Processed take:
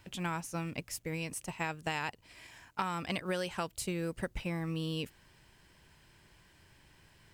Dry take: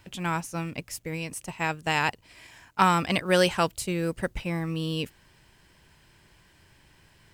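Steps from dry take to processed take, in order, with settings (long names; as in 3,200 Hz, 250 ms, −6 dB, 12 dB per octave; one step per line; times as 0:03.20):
downward compressor 16 to 1, threshold −27 dBFS, peak gain reduction 12.5 dB
level −3.5 dB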